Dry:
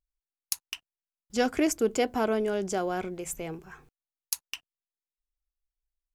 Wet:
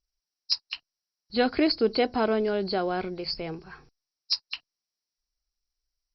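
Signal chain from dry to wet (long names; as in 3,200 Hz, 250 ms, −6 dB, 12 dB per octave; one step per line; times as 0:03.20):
hearing-aid frequency compression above 3,800 Hz 4 to 1
level +2 dB
Opus 96 kbit/s 48,000 Hz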